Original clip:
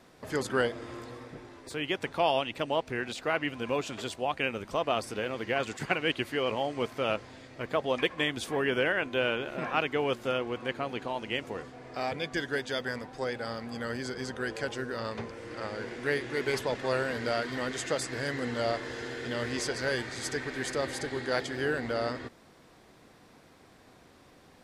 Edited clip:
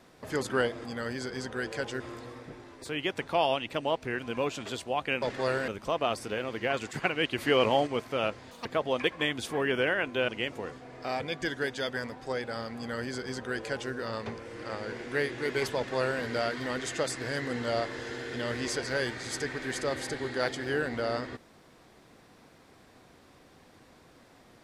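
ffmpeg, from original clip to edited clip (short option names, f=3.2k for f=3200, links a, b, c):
-filter_complex "[0:a]asplit=11[a][b][c][d][e][f][g][h][i][j][k];[a]atrim=end=0.852[l];[b]atrim=start=13.688:end=14.842[m];[c]atrim=start=0.848:end=3.042[n];[d]atrim=start=3.508:end=4.542[o];[e]atrim=start=16.668:end=17.132[p];[f]atrim=start=4.538:end=6.242[q];[g]atrim=start=6.238:end=6.732,asetpts=PTS-STARTPTS,volume=6dB[r];[h]atrim=start=6.728:end=7.374[s];[i]atrim=start=7.37:end=7.64,asetpts=PTS-STARTPTS,asetrate=82908,aresample=44100[t];[j]atrim=start=7.636:end=9.272[u];[k]atrim=start=11.198[v];[l][m]acrossfade=d=0.004:c1=hsin:c2=hsin[w];[w][n]acrossfade=d=0.004:c1=hsin:c2=hsin[x];[x][o]acrossfade=d=0.004:c1=hsin:c2=hsin[y];[y][p]acrossfade=d=0.004:c1=hsin:c2=hsin[z];[z][q]acrossfade=d=0.004:c1=hsin:c2=hsin[aa];[aa][r]acrossfade=d=0.004:c1=hsin:c2=hsin[ab];[ab][s]acrossfade=d=0.004:c1=hsin:c2=hsin[ac];[ac][t]acrossfade=d=0.004:c1=hsin:c2=hsin[ad];[ad][u]acrossfade=d=0.004:c1=hsin:c2=hsin[ae];[ae][v]acrossfade=d=0.004:c1=hsin:c2=hsin"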